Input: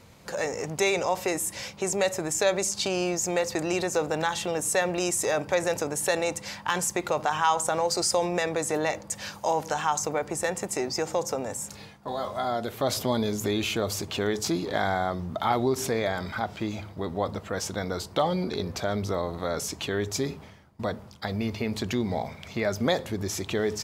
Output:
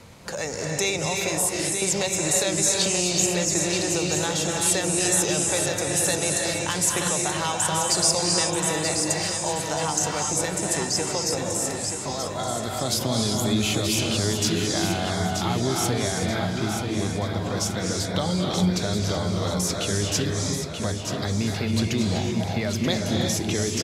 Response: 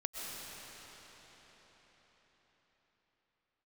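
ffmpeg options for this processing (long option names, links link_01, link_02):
-filter_complex "[1:a]atrim=start_sample=2205,afade=type=out:start_time=0.25:duration=0.01,atrim=end_sample=11466,asetrate=22491,aresample=44100[link_01];[0:a][link_01]afir=irnorm=-1:irlink=0,acrossover=split=210|3000[link_02][link_03][link_04];[link_03]acompressor=threshold=-41dB:ratio=2[link_05];[link_02][link_05][link_04]amix=inputs=3:normalize=0,aecho=1:1:931|1862|2793|3724|4655:0.447|0.188|0.0788|0.0331|0.0139,volume=5dB"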